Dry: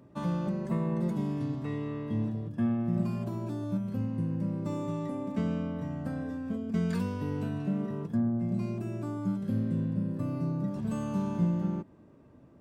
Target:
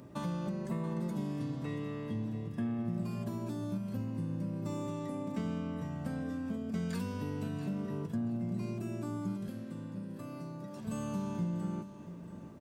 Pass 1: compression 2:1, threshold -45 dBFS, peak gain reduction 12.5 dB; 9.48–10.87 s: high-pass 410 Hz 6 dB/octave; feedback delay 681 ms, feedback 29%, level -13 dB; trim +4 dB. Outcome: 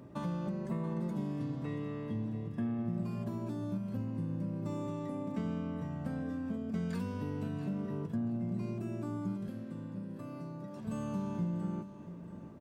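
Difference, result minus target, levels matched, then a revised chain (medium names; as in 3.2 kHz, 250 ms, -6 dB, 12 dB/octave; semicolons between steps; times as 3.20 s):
8 kHz band -7.0 dB
compression 2:1, threshold -45 dBFS, peak gain reduction 12.5 dB; treble shelf 3.1 kHz +8 dB; 9.48–10.87 s: high-pass 410 Hz 6 dB/octave; feedback delay 681 ms, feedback 29%, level -13 dB; trim +4 dB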